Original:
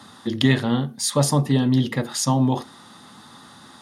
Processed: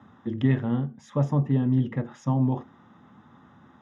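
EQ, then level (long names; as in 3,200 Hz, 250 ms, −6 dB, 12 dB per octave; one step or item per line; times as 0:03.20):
moving average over 10 samples
high-frequency loss of the air 85 metres
low-shelf EQ 250 Hz +8 dB
−8.5 dB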